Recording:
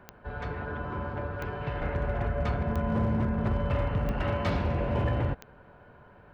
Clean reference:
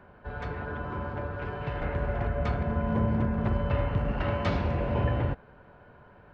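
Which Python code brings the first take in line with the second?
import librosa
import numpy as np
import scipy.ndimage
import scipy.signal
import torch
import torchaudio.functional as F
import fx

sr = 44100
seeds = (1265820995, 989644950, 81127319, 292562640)

y = fx.fix_declip(x, sr, threshold_db=-21.0)
y = fx.fix_declick_ar(y, sr, threshold=10.0)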